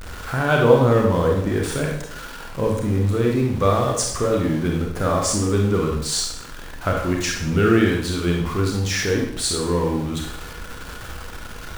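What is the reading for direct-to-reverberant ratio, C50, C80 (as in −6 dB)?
0.0 dB, 3.0 dB, 7.0 dB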